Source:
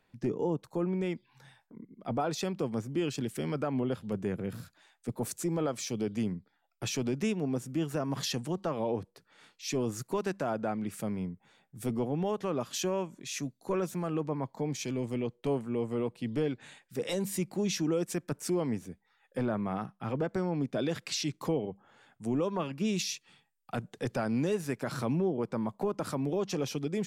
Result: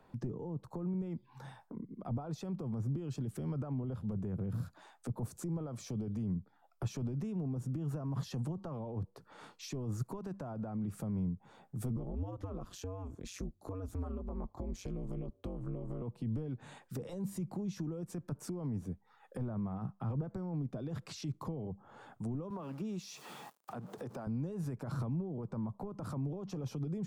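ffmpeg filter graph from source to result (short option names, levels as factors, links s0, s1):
-filter_complex "[0:a]asettb=1/sr,asplit=3[s0][s1][s2];[s0]atrim=end=11.964[s3];[s1]atrim=start=11.96:end=16.02,asetpts=PTS-STARTPTS,afade=t=in:d=0.004:c=qsin,afade=t=out:st=4.056:d=0.004:c=qsin,bandreject=f=860:w=5.6,acompressor=threshold=0.0178:ratio=6:attack=3.2:release=140:knee=1:detection=peak,aeval=exprs='val(0)*sin(2*PI*94*n/s)':c=same[s4];[s2]atrim=start=16.016[s5];[s3][s4]acrossfade=d=0.004:c1=hsin:c2=qsin[s6];[s6][s5]acrossfade=d=0.004:c1=qsin:c2=hsin,asettb=1/sr,asplit=3[s7][s8][s9];[s7]atrim=end=22.504[s10];[s8]atrim=start=22.5:end=24.27,asetpts=PTS-STARTPTS,afade=t=in:d=0.004:c=qsin,afade=t=out:st=1.766:d=0.004:c=qsin,aeval=exprs='val(0)+0.5*0.00473*sgn(val(0))':c=same,highpass=240,acompressor=threshold=0.0141:ratio=3:attack=3.2:release=140:knee=1:detection=peak[s11];[s9]atrim=start=24.266[s12];[s10][s11]acrossfade=d=0.004:c1=hsin:c2=qsin[s13];[s13][s12]acrossfade=d=0.004:c1=qsin:c2=hsin,alimiter=level_in=2.37:limit=0.0631:level=0:latency=1:release=35,volume=0.422,highshelf=f=1500:t=q:w=1.5:g=-8.5,acrossover=split=160[s14][s15];[s15]acompressor=threshold=0.00178:ratio=4[s16];[s14][s16]amix=inputs=2:normalize=0,volume=2.82"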